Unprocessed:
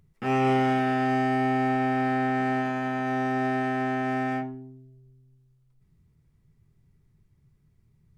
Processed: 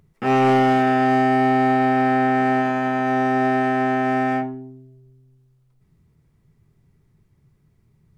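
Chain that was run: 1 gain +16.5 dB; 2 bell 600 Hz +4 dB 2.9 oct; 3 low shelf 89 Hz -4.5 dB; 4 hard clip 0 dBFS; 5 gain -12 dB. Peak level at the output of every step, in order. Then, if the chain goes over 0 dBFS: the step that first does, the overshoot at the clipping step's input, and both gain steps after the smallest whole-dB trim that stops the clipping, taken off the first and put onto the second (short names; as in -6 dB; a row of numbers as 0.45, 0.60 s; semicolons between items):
+3.0, +5.5, +5.5, 0.0, -12.0 dBFS; step 1, 5.5 dB; step 1 +10.5 dB, step 5 -6 dB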